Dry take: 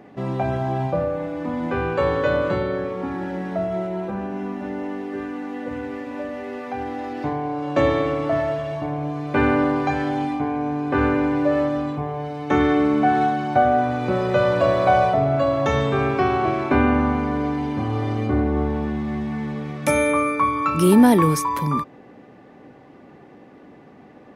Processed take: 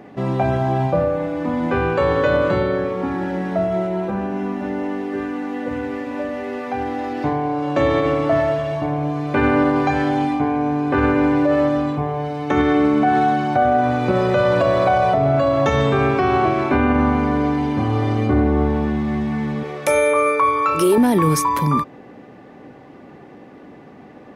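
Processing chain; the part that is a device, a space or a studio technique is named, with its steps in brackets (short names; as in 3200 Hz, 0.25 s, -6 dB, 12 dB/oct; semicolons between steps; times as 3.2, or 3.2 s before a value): 19.63–20.98 resonant low shelf 320 Hz -8 dB, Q 3; clipper into limiter (hard clip -5.5 dBFS, distortion -42 dB; limiter -12.5 dBFS, peak gain reduction 7 dB); gain +4.5 dB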